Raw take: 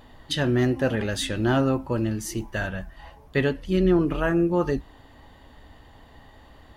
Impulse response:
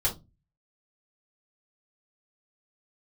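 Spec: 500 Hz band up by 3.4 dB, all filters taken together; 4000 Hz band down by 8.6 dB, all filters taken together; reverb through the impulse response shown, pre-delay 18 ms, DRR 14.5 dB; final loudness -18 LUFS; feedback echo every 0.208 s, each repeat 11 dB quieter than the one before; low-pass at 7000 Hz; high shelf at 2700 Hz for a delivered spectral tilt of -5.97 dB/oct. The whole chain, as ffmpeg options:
-filter_complex "[0:a]lowpass=7k,equalizer=f=500:t=o:g=5,highshelf=f=2.7k:g=-6.5,equalizer=f=4k:t=o:g=-5.5,aecho=1:1:208|416|624:0.282|0.0789|0.0221,asplit=2[a][b];[1:a]atrim=start_sample=2205,adelay=18[c];[b][c]afir=irnorm=-1:irlink=0,volume=-22.5dB[d];[a][d]amix=inputs=2:normalize=0,volume=4.5dB"

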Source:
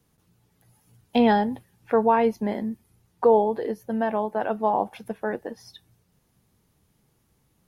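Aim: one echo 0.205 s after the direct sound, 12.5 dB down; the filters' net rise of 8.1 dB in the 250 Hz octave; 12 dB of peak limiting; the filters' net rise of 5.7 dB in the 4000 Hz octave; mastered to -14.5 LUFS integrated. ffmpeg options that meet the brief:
-af "equalizer=f=250:t=o:g=9,equalizer=f=4k:t=o:g=7.5,alimiter=limit=-15dB:level=0:latency=1,aecho=1:1:205:0.237,volume=11dB"

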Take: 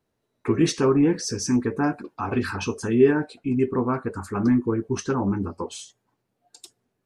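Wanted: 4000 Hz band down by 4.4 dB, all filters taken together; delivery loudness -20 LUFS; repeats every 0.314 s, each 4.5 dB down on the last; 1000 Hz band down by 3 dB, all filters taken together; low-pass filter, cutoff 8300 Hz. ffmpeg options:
-af "lowpass=8.3k,equalizer=f=1k:t=o:g=-3.5,equalizer=f=4k:t=o:g=-5.5,aecho=1:1:314|628|942|1256|1570|1884|2198|2512|2826:0.596|0.357|0.214|0.129|0.0772|0.0463|0.0278|0.0167|0.01,volume=2.5dB"

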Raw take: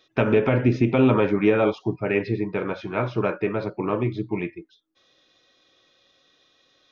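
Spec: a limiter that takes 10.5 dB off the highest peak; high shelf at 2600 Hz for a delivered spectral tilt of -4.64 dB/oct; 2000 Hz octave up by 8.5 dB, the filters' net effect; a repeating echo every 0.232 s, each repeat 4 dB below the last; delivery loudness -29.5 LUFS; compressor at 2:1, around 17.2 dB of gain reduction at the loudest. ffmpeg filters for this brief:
-af "equalizer=f=2k:t=o:g=7.5,highshelf=f=2.6k:g=7,acompressor=threshold=-46dB:ratio=2,alimiter=level_in=6.5dB:limit=-24dB:level=0:latency=1,volume=-6.5dB,aecho=1:1:232|464|696|928|1160|1392|1624|1856|2088:0.631|0.398|0.25|0.158|0.0994|0.0626|0.0394|0.0249|0.0157,volume=10.5dB"

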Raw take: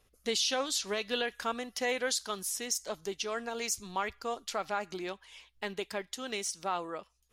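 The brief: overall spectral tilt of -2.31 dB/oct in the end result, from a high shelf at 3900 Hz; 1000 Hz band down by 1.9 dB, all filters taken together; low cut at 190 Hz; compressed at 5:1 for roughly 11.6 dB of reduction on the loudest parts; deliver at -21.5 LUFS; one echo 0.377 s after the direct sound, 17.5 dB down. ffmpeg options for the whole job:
-af "highpass=190,equalizer=f=1k:t=o:g=-3,highshelf=f=3.9k:g=4.5,acompressor=threshold=-38dB:ratio=5,aecho=1:1:377:0.133,volume=19.5dB"

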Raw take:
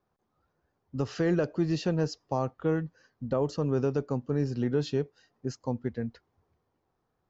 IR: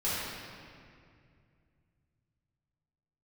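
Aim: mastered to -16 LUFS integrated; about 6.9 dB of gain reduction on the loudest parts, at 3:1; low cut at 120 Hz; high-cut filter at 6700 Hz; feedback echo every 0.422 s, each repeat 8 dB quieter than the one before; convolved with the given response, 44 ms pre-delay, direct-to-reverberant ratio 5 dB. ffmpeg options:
-filter_complex "[0:a]highpass=120,lowpass=6.7k,acompressor=threshold=-32dB:ratio=3,aecho=1:1:422|844|1266|1688|2110:0.398|0.159|0.0637|0.0255|0.0102,asplit=2[a][b];[1:a]atrim=start_sample=2205,adelay=44[c];[b][c]afir=irnorm=-1:irlink=0,volume=-14dB[d];[a][d]amix=inputs=2:normalize=0,volume=19dB"

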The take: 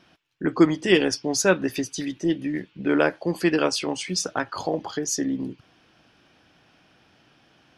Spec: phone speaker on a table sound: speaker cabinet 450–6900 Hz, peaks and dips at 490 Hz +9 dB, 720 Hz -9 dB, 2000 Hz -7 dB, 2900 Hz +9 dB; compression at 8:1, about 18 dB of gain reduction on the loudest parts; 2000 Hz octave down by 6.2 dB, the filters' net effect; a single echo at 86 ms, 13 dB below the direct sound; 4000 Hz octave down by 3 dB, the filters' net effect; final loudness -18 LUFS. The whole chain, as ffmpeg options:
-af "equalizer=f=2k:t=o:g=-6.5,equalizer=f=4k:t=o:g=-7,acompressor=threshold=-31dB:ratio=8,highpass=f=450:w=0.5412,highpass=f=450:w=1.3066,equalizer=f=490:t=q:w=4:g=9,equalizer=f=720:t=q:w=4:g=-9,equalizer=f=2k:t=q:w=4:g=-7,equalizer=f=2.9k:t=q:w=4:g=9,lowpass=f=6.9k:w=0.5412,lowpass=f=6.9k:w=1.3066,aecho=1:1:86:0.224,volume=20.5dB"

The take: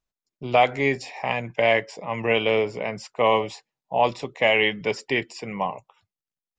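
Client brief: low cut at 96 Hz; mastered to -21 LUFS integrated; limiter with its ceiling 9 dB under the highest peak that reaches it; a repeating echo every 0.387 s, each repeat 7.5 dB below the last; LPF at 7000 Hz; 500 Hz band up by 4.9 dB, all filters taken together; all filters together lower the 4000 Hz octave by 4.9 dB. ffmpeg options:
-af "highpass=96,lowpass=7k,equalizer=f=500:t=o:g=6,equalizer=f=4k:t=o:g=-8,alimiter=limit=-13dB:level=0:latency=1,aecho=1:1:387|774|1161|1548|1935:0.422|0.177|0.0744|0.0312|0.0131,volume=3.5dB"

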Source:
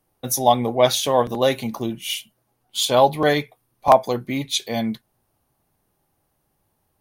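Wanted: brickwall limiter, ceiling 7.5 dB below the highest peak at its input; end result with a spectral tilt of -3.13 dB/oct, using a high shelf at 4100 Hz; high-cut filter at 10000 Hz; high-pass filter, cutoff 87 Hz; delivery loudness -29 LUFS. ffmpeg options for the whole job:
-af "highpass=87,lowpass=10k,highshelf=f=4.1k:g=4.5,volume=-7dB,alimiter=limit=-15dB:level=0:latency=1"

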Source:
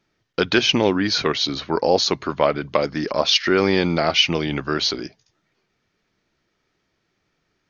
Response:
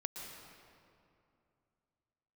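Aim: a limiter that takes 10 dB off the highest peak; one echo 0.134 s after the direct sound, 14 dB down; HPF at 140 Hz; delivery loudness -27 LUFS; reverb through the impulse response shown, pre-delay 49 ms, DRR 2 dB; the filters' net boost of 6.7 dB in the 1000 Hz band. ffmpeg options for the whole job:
-filter_complex "[0:a]highpass=140,equalizer=f=1k:t=o:g=8.5,alimiter=limit=-8.5dB:level=0:latency=1,aecho=1:1:134:0.2,asplit=2[a][b];[1:a]atrim=start_sample=2205,adelay=49[c];[b][c]afir=irnorm=-1:irlink=0,volume=-1.5dB[d];[a][d]amix=inputs=2:normalize=0,volume=-8.5dB"

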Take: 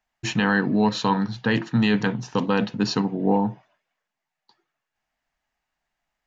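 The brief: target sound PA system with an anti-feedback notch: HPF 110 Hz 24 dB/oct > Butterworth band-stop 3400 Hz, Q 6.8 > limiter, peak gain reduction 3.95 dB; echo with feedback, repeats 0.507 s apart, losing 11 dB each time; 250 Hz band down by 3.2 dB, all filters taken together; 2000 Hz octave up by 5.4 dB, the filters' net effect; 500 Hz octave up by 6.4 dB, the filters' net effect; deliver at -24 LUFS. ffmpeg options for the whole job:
-af "highpass=f=110:w=0.5412,highpass=f=110:w=1.3066,asuperstop=centerf=3400:order=8:qfactor=6.8,equalizer=f=250:t=o:g=-6,equalizer=f=500:t=o:g=8.5,equalizer=f=2k:t=o:g=6.5,aecho=1:1:507|1014|1521:0.282|0.0789|0.0221,volume=-1dB,alimiter=limit=-10dB:level=0:latency=1"

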